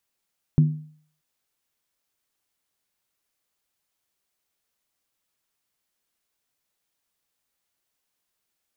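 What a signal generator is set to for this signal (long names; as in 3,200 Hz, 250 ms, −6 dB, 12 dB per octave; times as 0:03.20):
struck skin, lowest mode 153 Hz, decay 0.52 s, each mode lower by 11.5 dB, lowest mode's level −10.5 dB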